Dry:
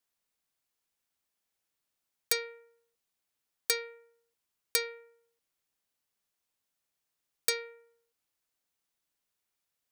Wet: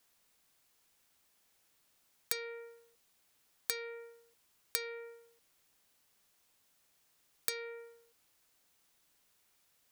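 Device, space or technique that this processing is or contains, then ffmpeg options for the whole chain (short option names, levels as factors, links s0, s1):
serial compression, leveller first: -af "acompressor=threshold=0.0251:ratio=2,acompressor=threshold=0.00501:ratio=5,volume=3.98"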